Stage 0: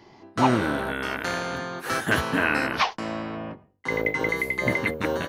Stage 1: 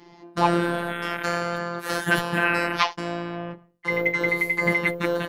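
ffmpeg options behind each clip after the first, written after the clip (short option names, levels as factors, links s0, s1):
-af "afftfilt=real='hypot(re,im)*cos(PI*b)':imag='0':win_size=1024:overlap=0.75,volume=1.68"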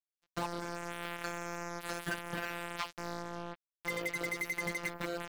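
-af "acompressor=threshold=0.0562:ratio=8,acrusher=bits=4:mix=0:aa=0.5,volume=0.422"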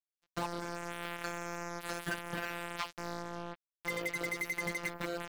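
-af anull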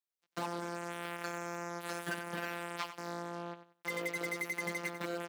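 -filter_complex "[0:a]highpass=f=160:w=0.5412,highpass=f=160:w=1.3066,asplit=2[s0][s1];[s1]aecho=0:1:93|186|279:0.266|0.0692|0.018[s2];[s0][s2]amix=inputs=2:normalize=0,volume=0.841"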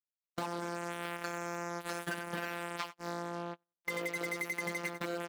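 -af "agate=range=0.0251:threshold=0.00891:ratio=16:detection=peak,acompressor=threshold=0.01:ratio=2.5,volume=1.78"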